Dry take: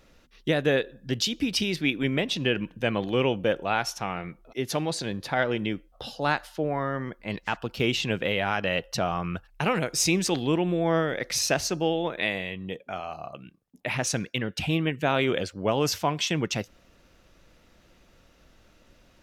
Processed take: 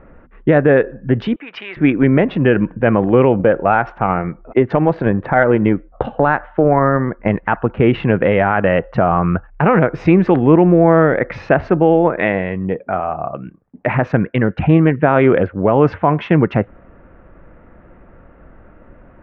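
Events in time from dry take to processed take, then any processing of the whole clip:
1.36–1.77 HPF 1200 Hz
3.39–7.4 transient shaper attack +10 dB, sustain -1 dB
whole clip: Wiener smoothing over 9 samples; LPF 1800 Hz 24 dB/oct; maximiser +16.5 dB; gain -1 dB

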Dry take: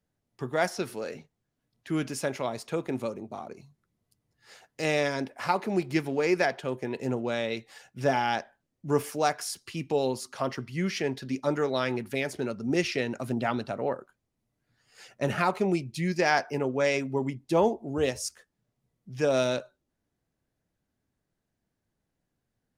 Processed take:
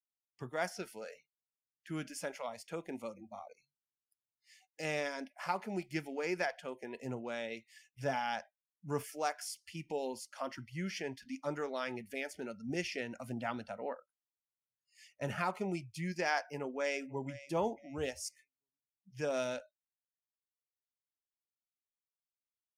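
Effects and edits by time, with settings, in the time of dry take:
16.45–17.42 echo throw 0.49 s, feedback 30%, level -15.5 dB
whole clip: spectral noise reduction 29 dB; notch 3900 Hz, Q 6.4; dynamic EQ 350 Hz, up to -4 dB, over -39 dBFS, Q 0.9; gain -8 dB

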